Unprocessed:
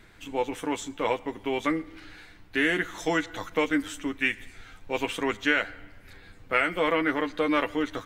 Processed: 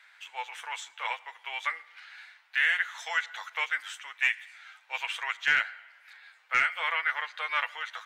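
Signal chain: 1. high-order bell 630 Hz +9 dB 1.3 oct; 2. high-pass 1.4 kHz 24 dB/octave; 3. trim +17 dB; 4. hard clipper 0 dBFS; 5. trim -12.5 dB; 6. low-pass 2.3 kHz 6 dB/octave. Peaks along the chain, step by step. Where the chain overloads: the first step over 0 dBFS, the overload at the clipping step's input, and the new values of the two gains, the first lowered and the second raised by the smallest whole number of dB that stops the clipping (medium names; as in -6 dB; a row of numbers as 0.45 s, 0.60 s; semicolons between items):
-5.5 dBFS, -11.0 dBFS, +6.0 dBFS, 0.0 dBFS, -12.5 dBFS, -13.5 dBFS; step 3, 6.0 dB; step 3 +11 dB, step 5 -6.5 dB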